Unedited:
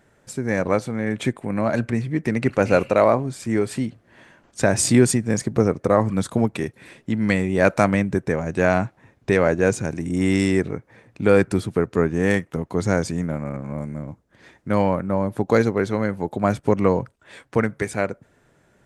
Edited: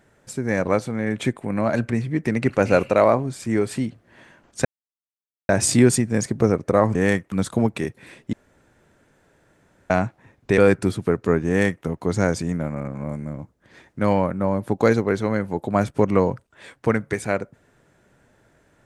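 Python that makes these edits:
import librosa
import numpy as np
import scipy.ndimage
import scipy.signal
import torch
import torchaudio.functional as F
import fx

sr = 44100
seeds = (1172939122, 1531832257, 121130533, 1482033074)

y = fx.edit(x, sr, fx.insert_silence(at_s=4.65, length_s=0.84),
    fx.room_tone_fill(start_s=7.12, length_s=1.57),
    fx.cut(start_s=9.37, length_s=1.9),
    fx.duplicate(start_s=12.17, length_s=0.37, to_s=6.11), tone=tone)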